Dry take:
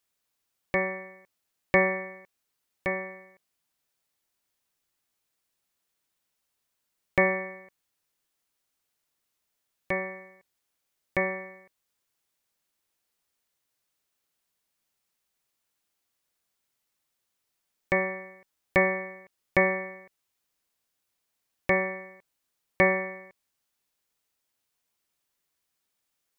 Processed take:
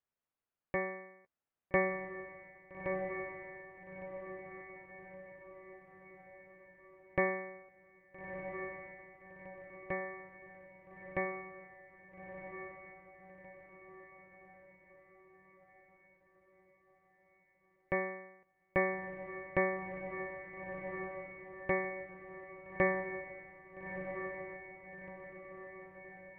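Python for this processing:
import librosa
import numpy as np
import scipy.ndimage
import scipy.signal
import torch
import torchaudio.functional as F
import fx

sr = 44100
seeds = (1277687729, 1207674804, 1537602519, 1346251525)

y = scipy.signal.sosfilt(scipy.signal.bessel(4, 1700.0, 'lowpass', norm='mag', fs=sr, output='sos'), x)
y = fx.doubler(y, sr, ms=13.0, db=-12.5)
y = fx.echo_diffused(y, sr, ms=1311, feedback_pct=50, wet_db=-7.0)
y = y * 10.0 ** (-7.5 / 20.0)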